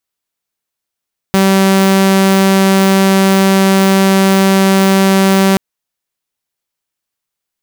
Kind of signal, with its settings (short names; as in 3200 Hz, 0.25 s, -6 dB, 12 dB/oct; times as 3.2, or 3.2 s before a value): tone saw 193 Hz -4.5 dBFS 4.23 s